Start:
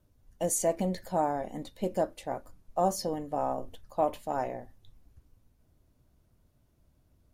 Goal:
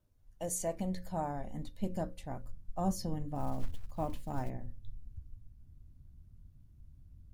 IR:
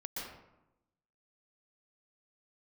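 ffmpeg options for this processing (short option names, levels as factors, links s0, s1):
-filter_complex "[0:a]asubboost=boost=12:cutoff=160,asettb=1/sr,asplit=3[s0][s1][s2];[s0]atrim=end=3.354[s3];[s1]atrim=start=3.35:end=4.5,asetpts=PTS-STARTPTS,afade=t=in:d=0.004:c=qsin,afade=t=out:st=1.146:d=0.004:c=qsin,acrusher=bits=8:mode=log:mix=0:aa=0.000001[s4];[s2]atrim=start=4.496[s5];[s3][s4]acrossfade=d=0.004:c1=hsin:c2=qsin[s6];[s6][s5]acrossfade=d=0.004:c1=qsin:c2=hsin,bandreject=f=60:t=h:w=6,bandreject=f=120:t=h:w=6,bandreject=f=180:t=h:w=6,bandreject=f=240:t=h:w=6,bandreject=f=300:t=h:w=6,bandreject=f=360:t=h:w=6,bandreject=f=420:t=h:w=6,bandreject=f=480:t=h:w=6,bandreject=f=540:t=h:w=6,volume=0.447"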